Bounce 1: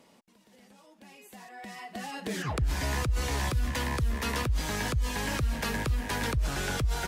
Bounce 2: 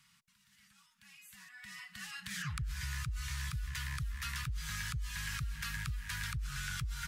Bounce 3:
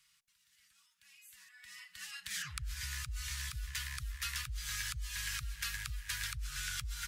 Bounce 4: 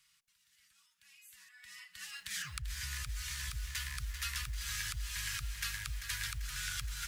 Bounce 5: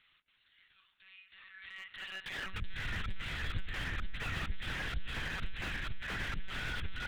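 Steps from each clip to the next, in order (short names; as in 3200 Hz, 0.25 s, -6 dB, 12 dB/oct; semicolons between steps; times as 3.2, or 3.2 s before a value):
elliptic band-stop 150–1300 Hz, stop band 60 dB; compressor, threshold -34 dBFS, peak gain reduction 10 dB; gain -1.5 dB
passive tone stack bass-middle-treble 10-0-10; upward expander 1.5:1, over -54 dBFS; gain +6 dB
lo-fi delay 0.391 s, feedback 55%, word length 9-bit, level -9 dB
monotone LPC vocoder at 8 kHz 190 Hz; slew limiter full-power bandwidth 13 Hz; gain +6 dB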